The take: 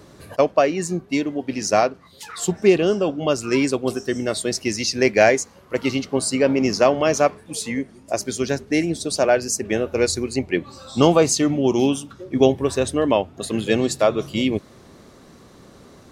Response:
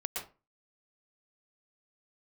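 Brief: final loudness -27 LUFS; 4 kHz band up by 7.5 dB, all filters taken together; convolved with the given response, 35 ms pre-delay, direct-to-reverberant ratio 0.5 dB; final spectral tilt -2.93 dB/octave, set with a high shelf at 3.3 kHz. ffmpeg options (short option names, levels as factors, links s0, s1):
-filter_complex "[0:a]highshelf=f=3300:g=7.5,equalizer=f=4000:t=o:g=4,asplit=2[s0][s1];[1:a]atrim=start_sample=2205,adelay=35[s2];[s1][s2]afir=irnorm=-1:irlink=0,volume=0.708[s3];[s0][s3]amix=inputs=2:normalize=0,volume=0.299"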